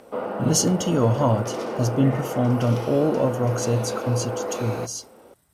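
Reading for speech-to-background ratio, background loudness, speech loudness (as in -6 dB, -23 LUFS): 6.0 dB, -29.5 LUFS, -23.5 LUFS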